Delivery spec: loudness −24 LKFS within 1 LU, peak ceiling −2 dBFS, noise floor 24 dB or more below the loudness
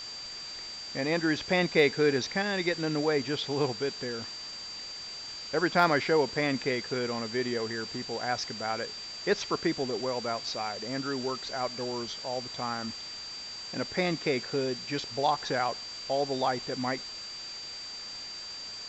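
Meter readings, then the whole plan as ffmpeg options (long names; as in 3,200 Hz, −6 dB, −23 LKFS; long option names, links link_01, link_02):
interfering tone 4,700 Hz; level of the tone −39 dBFS; background noise floor −41 dBFS; target noise floor −55 dBFS; integrated loudness −31.0 LKFS; sample peak −10.5 dBFS; target loudness −24.0 LKFS
→ -af "bandreject=frequency=4700:width=30"
-af "afftdn=noise_reduction=14:noise_floor=-41"
-af "volume=7dB"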